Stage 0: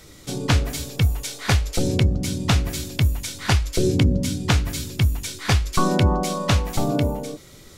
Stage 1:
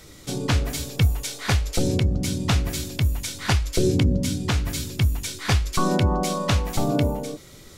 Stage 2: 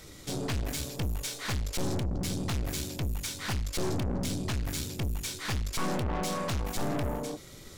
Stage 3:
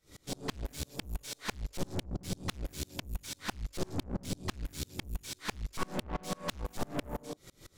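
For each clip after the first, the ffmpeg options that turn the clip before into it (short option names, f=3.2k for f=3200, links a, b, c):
-af "alimiter=limit=-9.5dB:level=0:latency=1:release=178"
-af "aeval=exprs='(tanh(28.2*val(0)+0.55)-tanh(0.55))/28.2':c=same"
-af "aeval=exprs='val(0)*pow(10,-32*if(lt(mod(-6*n/s,1),2*abs(-6)/1000),1-mod(-6*n/s,1)/(2*abs(-6)/1000),(mod(-6*n/s,1)-2*abs(-6)/1000)/(1-2*abs(-6)/1000))/20)':c=same,volume=2dB"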